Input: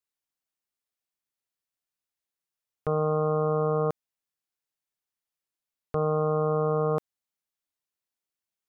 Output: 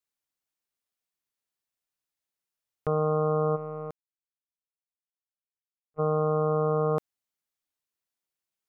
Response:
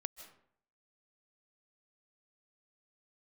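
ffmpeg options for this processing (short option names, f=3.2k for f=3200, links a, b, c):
-filter_complex "[0:a]asplit=3[a][b][c];[a]afade=t=out:st=3.55:d=0.02[d];[b]agate=range=-48dB:threshold=-22dB:ratio=16:detection=peak,afade=t=in:st=3.55:d=0.02,afade=t=out:st=5.98:d=0.02[e];[c]afade=t=in:st=5.98:d=0.02[f];[d][e][f]amix=inputs=3:normalize=0"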